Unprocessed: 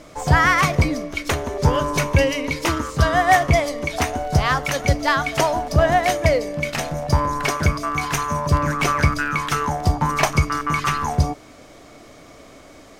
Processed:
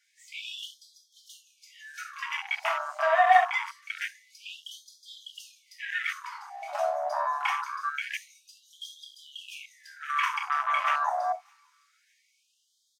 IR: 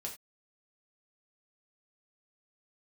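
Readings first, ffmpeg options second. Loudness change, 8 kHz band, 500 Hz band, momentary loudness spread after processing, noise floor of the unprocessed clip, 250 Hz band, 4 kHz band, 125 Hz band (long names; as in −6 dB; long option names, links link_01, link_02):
−8.5 dB, −19.0 dB, −12.5 dB, 19 LU, −45 dBFS, below −40 dB, −10.5 dB, below −40 dB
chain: -filter_complex "[0:a]asoftclip=type=tanh:threshold=-11dB,aecho=1:1:610|1220|1830|2440:0.0891|0.0472|0.025|0.0133[link_01];[1:a]atrim=start_sample=2205[link_02];[link_01][link_02]afir=irnorm=-1:irlink=0,afwtdn=0.0501,afftfilt=real='re*gte(b*sr/1024,560*pow(3200/560,0.5+0.5*sin(2*PI*0.25*pts/sr)))':imag='im*gte(b*sr/1024,560*pow(3200/560,0.5+0.5*sin(2*PI*0.25*pts/sr)))':win_size=1024:overlap=0.75"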